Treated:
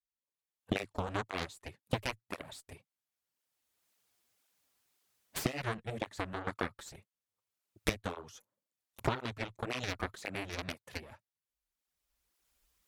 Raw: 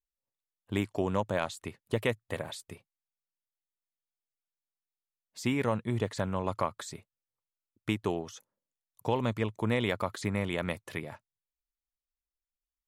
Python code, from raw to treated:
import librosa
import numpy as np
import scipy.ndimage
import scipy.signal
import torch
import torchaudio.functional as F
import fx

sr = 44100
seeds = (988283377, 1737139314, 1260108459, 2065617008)

y = fx.recorder_agc(x, sr, target_db=-18.5, rise_db_per_s=19.0, max_gain_db=30)
y = fx.cheby_harmonics(y, sr, harmonics=(3, 6, 7), levels_db=(-15, -17, -18), full_scale_db=-8.0)
y = fx.flanger_cancel(y, sr, hz=1.9, depth_ms=7.9)